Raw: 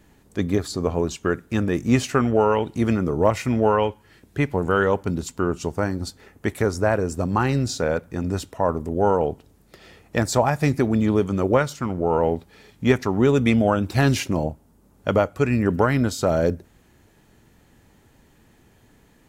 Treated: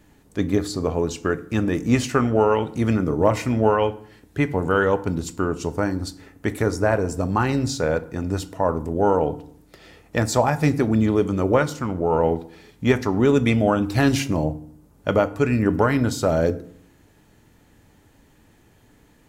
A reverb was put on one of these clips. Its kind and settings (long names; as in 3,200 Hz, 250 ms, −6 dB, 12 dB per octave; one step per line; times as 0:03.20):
feedback delay network reverb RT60 0.6 s, low-frequency decay 1.35×, high-frequency decay 0.7×, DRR 11.5 dB